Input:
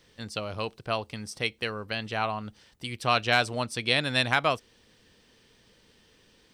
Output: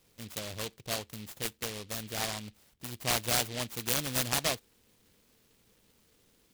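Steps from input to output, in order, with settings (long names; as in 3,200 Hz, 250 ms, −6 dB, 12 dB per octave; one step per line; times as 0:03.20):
short delay modulated by noise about 3,100 Hz, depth 0.23 ms
level −5.5 dB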